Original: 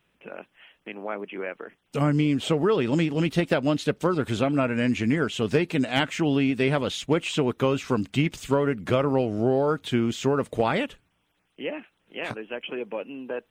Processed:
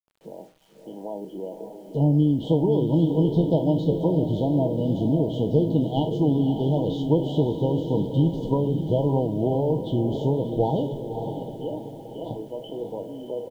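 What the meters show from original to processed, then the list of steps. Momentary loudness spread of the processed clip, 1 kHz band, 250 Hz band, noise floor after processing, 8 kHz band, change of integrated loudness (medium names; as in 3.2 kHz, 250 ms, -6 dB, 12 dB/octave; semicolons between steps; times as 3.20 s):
14 LU, -2.5 dB, +2.0 dB, -47 dBFS, under -15 dB, +2.0 dB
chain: spectral sustain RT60 0.33 s; bass shelf 110 Hz +7 dB; FFT band-reject 990–2900 Hz; tape spacing loss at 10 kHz 34 dB; comb 6.3 ms, depth 38%; echo that smears into a reverb 581 ms, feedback 47%, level -7 dB; bit crusher 10-bit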